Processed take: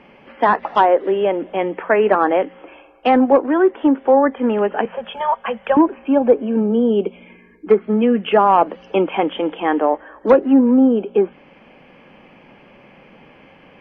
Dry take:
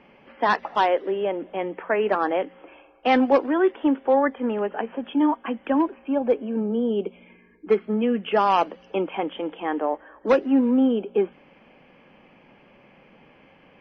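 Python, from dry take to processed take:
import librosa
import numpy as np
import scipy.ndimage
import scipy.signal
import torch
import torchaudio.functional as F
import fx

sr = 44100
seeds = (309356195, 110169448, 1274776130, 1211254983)

y = fx.cheby1_bandstop(x, sr, low_hz=190.0, high_hz=460.0, order=2, at=(4.85, 5.77))
y = fx.env_lowpass_down(y, sr, base_hz=1300.0, full_db=-15.5)
y = fx.rider(y, sr, range_db=3, speed_s=2.0)
y = y * librosa.db_to_amplitude(7.0)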